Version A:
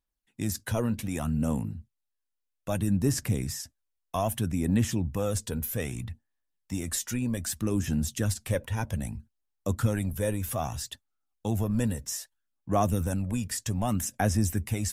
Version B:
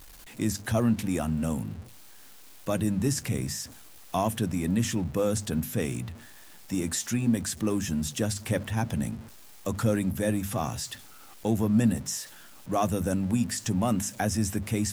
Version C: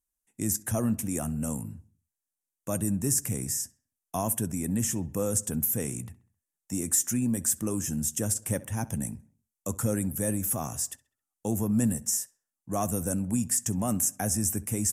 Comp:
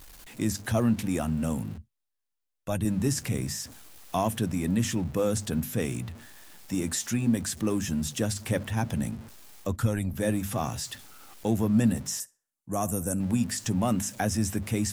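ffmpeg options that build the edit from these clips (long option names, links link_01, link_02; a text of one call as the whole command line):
ffmpeg -i take0.wav -i take1.wav -i take2.wav -filter_complex "[0:a]asplit=2[link_01][link_02];[1:a]asplit=4[link_03][link_04][link_05][link_06];[link_03]atrim=end=1.782[link_07];[link_01]atrim=start=1.778:end=2.852[link_08];[link_04]atrim=start=2.848:end=9.77[link_09];[link_02]atrim=start=9.61:end=10.22[link_10];[link_05]atrim=start=10.06:end=12.202[link_11];[2:a]atrim=start=12.198:end=13.202[link_12];[link_06]atrim=start=13.198[link_13];[link_07][link_08]acrossfade=duration=0.004:curve1=hsin:curve2=hsin[link_14];[link_14][link_09]acrossfade=duration=0.004:curve1=hsin:curve2=hsin[link_15];[link_15][link_10]acrossfade=duration=0.16:curve1=tri:curve2=tri[link_16];[link_16][link_11]acrossfade=duration=0.16:curve1=tri:curve2=tri[link_17];[link_17][link_12]acrossfade=duration=0.004:curve1=hsin:curve2=hsin[link_18];[link_18][link_13]acrossfade=duration=0.004:curve1=hsin:curve2=hsin" out.wav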